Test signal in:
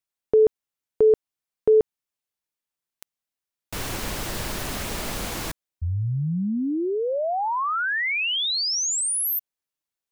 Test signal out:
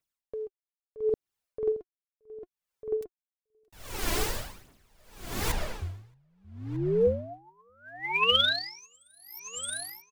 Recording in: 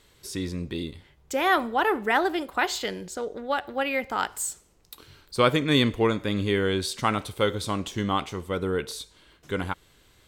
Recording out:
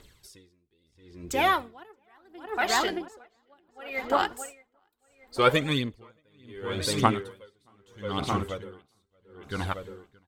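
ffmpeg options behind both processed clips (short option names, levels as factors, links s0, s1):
-filter_complex "[0:a]aphaser=in_gain=1:out_gain=1:delay=3.1:decay=0.59:speed=0.85:type=triangular,asplit=2[s0][s1];[s1]adelay=624,lowpass=f=3000:p=1,volume=0.631,asplit=2[s2][s3];[s3]adelay=624,lowpass=f=3000:p=1,volume=0.44,asplit=2[s4][s5];[s5]adelay=624,lowpass=f=3000:p=1,volume=0.44,asplit=2[s6][s7];[s7]adelay=624,lowpass=f=3000:p=1,volume=0.44,asplit=2[s8][s9];[s9]adelay=624,lowpass=f=3000:p=1,volume=0.44,asplit=2[s10][s11];[s11]adelay=624,lowpass=f=3000:p=1,volume=0.44[s12];[s0][s2][s4][s6][s8][s10][s12]amix=inputs=7:normalize=0,aeval=exprs='val(0)*pow(10,-39*(0.5-0.5*cos(2*PI*0.72*n/s))/20)':c=same"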